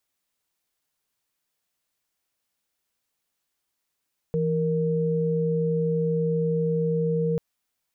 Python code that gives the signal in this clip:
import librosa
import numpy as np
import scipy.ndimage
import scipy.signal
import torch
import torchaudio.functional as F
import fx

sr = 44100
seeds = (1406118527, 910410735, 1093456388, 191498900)

y = fx.chord(sr, length_s=3.04, notes=(52, 70), wave='sine', level_db=-24.0)